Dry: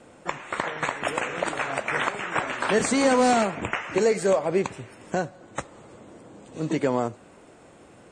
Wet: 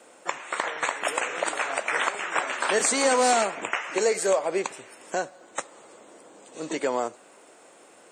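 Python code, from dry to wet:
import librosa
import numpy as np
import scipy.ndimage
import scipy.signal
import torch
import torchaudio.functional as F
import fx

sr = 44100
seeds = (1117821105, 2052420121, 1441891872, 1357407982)

y = scipy.signal.sosfilt(scipy.signal.butter(2, 410.0, 'highpass', fs=sr, output='sos'), x)
y = fx.high_shelf(y, sr, hz=7100.0, db=11.5)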